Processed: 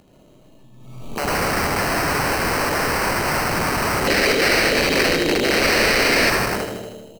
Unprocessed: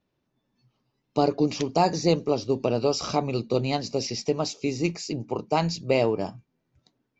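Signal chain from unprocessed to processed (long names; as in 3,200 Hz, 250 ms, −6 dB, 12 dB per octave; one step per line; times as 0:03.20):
adaptive Wiener filter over 15 samples
high-shelf EQ 6,600 Hz +8 dB
mains-hum notches 60/120/180/240/300 Hz
gate on every frequency bin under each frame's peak −25 dB strong
convolution reverb RT60 1.4 s, pre-delay 75 ms, DRR −8 dB
sample-rate reduction 3,500 Hz, jitter 0%
wave folding −14 dBFS
upward compression, threshold −36 dBFS
wrap-around overflow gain 17.5 dB
0:04.07–0:06.30: octave-band graphic EQ 125/250/500/1,000/2,000/4,000 Hz −7/+4/+7/−8/+8/+10 dB
repeating echo 79 ms, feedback 56%, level −7.5 dB
background raised ahead of every attack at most 46 dB per second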